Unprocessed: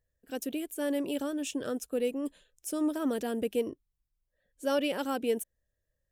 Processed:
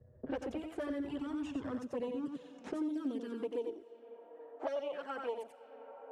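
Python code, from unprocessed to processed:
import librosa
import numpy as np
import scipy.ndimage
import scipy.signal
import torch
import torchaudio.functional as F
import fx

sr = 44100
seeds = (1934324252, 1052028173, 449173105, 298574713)

y = np.where(x < 0.0, 10.0 ** (-12.0 / 20.0) * x, x)
y = fx.rev_schroeder(y, sr, rt60_s=3.2, comb_ms=26, drr_db=19.5)
y = fx.env_flanger(y, sr, rest_ms=8.3, full_db=-27.5)
y = fx.rider(y, sr, range_db=4, speed_s=0.5)
y = scipy.signal.sosfilt(scipy.signal.butter(2, 6400.0, 'lowpass', fs=sr, output='sos'), y)
y = y + 10.0 ** (-6.0 / 20.0) * np.pad(y, (int(89 * sr / 1000.0), 0))[:len(y)]
y = fx.env_lowpass(y, sr, base_hz=650.0, full_db=-33.0)
y = fx.high_shelf(y, sr, hz=2600.0, db=-9.5)
y = fx.filter_sweep_highpass(y, sr, from_hz=66.0, to_hz=670.0, start_s=1.1, end_s=4.57, q=2.5)
y = fx.band_squash(y, sr, depth_pct=100)
y = y * librosa.db_to_amplitude(-2.5)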